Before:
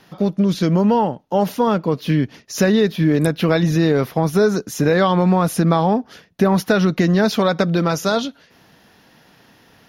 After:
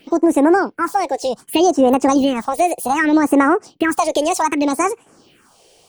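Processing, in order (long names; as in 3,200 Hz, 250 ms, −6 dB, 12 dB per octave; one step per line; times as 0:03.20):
all-pass phaser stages 4, 0.39 Hz, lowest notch 130–2,900 Hz
change of speed 1.68×
level +2.5 dB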